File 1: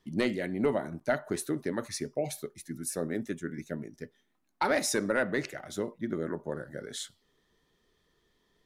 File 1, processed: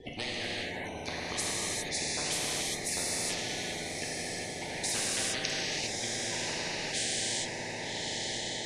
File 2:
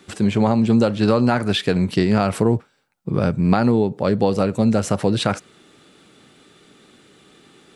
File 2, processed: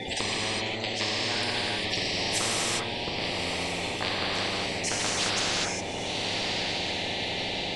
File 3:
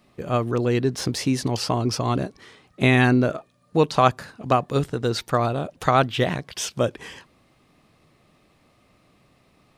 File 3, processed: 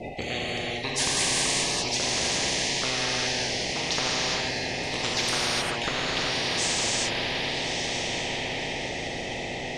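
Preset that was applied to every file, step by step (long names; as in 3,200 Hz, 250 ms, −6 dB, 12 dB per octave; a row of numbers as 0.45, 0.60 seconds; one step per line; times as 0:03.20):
spectral magnitudes quantised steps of 30 dB
Chebyshev band-stop filter 790–2,000 Hz, order 3
reverb reduction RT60 1.5 s
low-pass filter 4,500 Hz 12 dB per octave
parametric band 580 Hz +11.5 dB 2.8 octaves
downward compressor 6 to 1, threshold −22 dBFS
gate pattern "x.xxxx....xx" 180 BPM −12 dB
rotating-speaker cabinet horn 0.7 Hz
on a send: feedback delay with all-pass diffusion 1,160 ms, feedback 46%, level −11 dB
on the sum: reverb whose tail is shaped and stops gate 430 ms flat, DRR −6.5 dB
every bin compressed towards the loudest bin 10 to 1
normalise the peak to −12 dBFS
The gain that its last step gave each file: 0.0, −5.5, −2.5 decibels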